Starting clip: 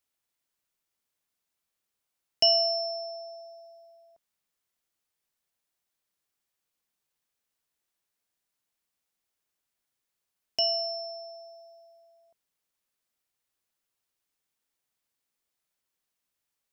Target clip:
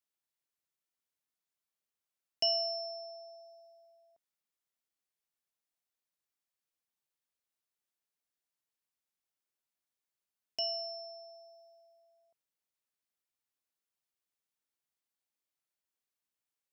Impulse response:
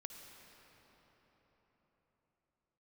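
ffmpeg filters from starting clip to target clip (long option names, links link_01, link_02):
-af "lowshelf=frequency=74:gain=-7,volume=-8.5dB"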